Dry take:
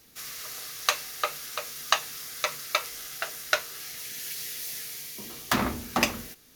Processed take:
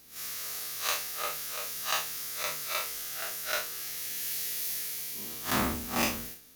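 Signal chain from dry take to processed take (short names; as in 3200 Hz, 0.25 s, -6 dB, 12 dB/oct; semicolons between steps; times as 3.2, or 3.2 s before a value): time blur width 90 ms; modulation noise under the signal 14 dB; high shelf 9800 Hz +6.5 dB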